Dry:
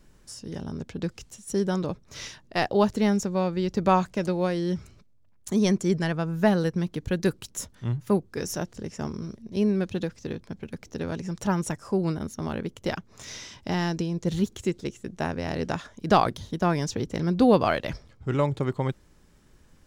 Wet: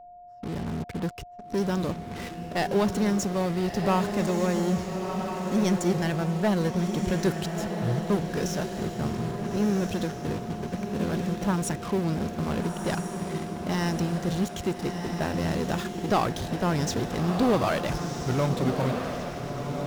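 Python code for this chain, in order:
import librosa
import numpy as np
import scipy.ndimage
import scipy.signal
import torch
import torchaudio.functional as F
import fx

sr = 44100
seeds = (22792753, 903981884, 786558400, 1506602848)

p1 = fx.env_lowpass(x, sr, base_hz=800.0, full_db=-23.0)
p2 = fx.leveller(p1, sr, passes=1)
p3 = fx.fuzz(p2, sr, gain_db=47.0, gate_db=-45.0)
p4 = p2 + F.gain(torch.from_numpy(p3), -11.5).numpy()
p5 = p4 + 10.0 ** (-36.0 / 20.0) * np.sin(2.0 * np.pi * 710.0 * np.arange(len(p4)) / sr)
p6 = fx.echo_diffused(p5, sr, ms=1332, feedback_pct=43, wet_db=-5)
y = F.gain(torch.from_numpy(p6), -8.5).numpy()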